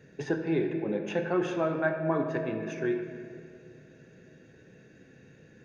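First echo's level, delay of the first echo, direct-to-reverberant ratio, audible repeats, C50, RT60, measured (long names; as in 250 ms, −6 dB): no echo audible, no echo audible, 4.0 dB, no echo audible, 5.5 dB, 2.5 s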